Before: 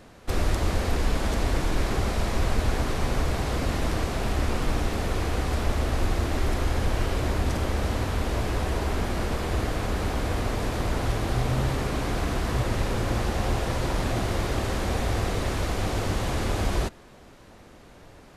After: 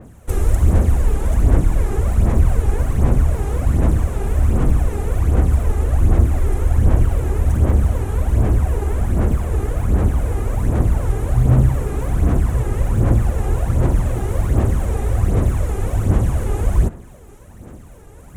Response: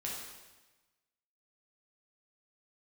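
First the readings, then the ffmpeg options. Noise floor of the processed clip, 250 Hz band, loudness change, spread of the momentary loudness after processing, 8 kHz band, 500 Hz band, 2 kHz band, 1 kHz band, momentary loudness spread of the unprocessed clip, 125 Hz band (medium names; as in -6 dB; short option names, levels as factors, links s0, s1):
-40 dBFS, +6.0 dB, +9.0 dB, 5 LU, +1.0 dB, +3.5 dB, -3.0 dB, 0.0 dB, 2 LU, +11.5 dB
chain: -filter_complex "[0:a]highpass=f=120:p=1,aemphasis=mode=reproduction:type=riaa,areverse,acompressor=mode=upward:threshold=0.0178:ratio=2.5,areverse,aphaser=in_gain=1:out_gain=1:delay=2.5:decay=0.56:speed=1.3:type=sinusoidal,aexciter=amount=12.8:drive=6.6:freq=6900,asplit=2[s0][s1];[1:a]atrim=start_sample=2205[s2];[s1][s2]afir=irnorm=-1:irlink=0,volume=0.0668[s3];[s0][s3]amix=inputs=2:normalize=0,adynamicequalizer=threshold=0.00631:dfrequency=3000:dqfactor=0.7:tfrequency=3000:tqfactor=0.7:attack=5:release=100:ratio=0.375:range=2.5:mode=cutabove:tftype=highshelf,volume=0.75"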